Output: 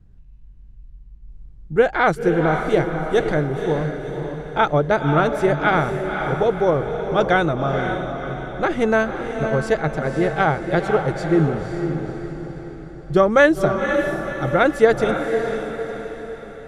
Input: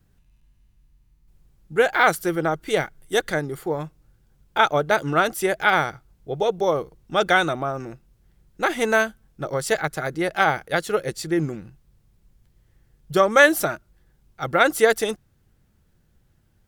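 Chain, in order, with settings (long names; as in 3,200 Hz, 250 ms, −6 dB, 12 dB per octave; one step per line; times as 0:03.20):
low-pass filter 8,700 Hz 12 dB per octave
spectral tilt −3 dB per octave
on a send: feedback delay with all-pass diffusion 521 ms, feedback 48%, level −6 dB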